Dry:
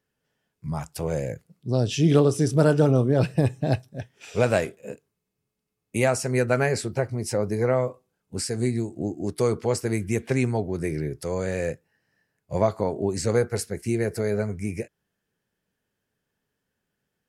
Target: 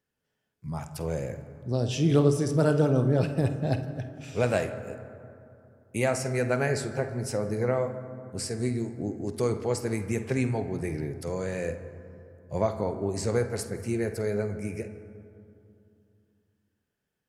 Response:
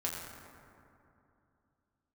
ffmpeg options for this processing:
-filter_complex "[0:a]asplit=2[s0][s1];[1:a]atrim=start_sample=2205,highshelf=f=9300:g=-10.5,adelay=49[s2];[s1][s2]afir=irnorm=-1:irlink=0,volume=0.266[s3];[s0][s3]amix=inputs=2:normalize=0,volume=0.596"

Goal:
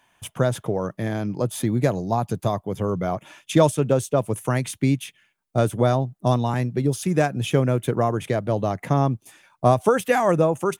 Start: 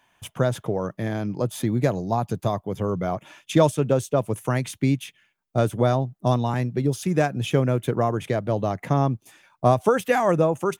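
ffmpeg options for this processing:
-af "equalizer=f=9600:t=o:w=0.59:g=4.5,volume=1.12"

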